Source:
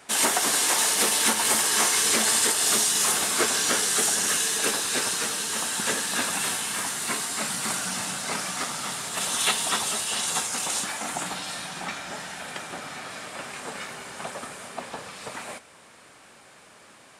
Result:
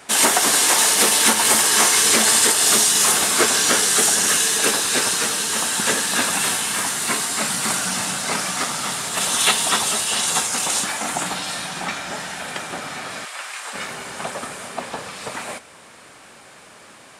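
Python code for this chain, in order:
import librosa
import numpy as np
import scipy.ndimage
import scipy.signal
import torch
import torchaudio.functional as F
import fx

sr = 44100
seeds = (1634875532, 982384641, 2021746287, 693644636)

y = fx.highpass(x, sr, hz=990.0, slope=12, at=(13.24, 13.72), fade=0.02)
y = F.gain(torch.from_numpy(y), 6.5).numpy()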